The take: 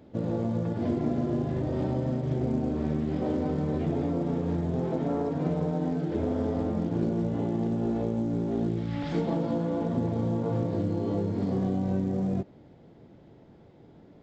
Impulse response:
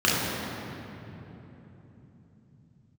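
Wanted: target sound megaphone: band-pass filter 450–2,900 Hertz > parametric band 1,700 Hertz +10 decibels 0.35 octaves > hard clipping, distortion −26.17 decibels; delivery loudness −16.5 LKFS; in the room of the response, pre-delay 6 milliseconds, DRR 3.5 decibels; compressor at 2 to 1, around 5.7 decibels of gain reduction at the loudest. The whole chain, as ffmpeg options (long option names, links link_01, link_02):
-filter_complex "[0:a]acompressor=threshold=-34dB:ratio=2,asplit=2[link_01][link_02];[1:a]atrim=start_sample=2205,adelay=6[link_03];[link_02][link_03]afir=irnorm=-1:irlink=0,volume=-22dB[link_04];[link_01][link_04]amix=inputs=2:normalize=0,highpass=450,lowpass=2900,equalizer=frequency=1700:width_type=o:width=0.35:gain=10,asoftclip=type=hard:threshold=-29.5dB,volume=22.5dB"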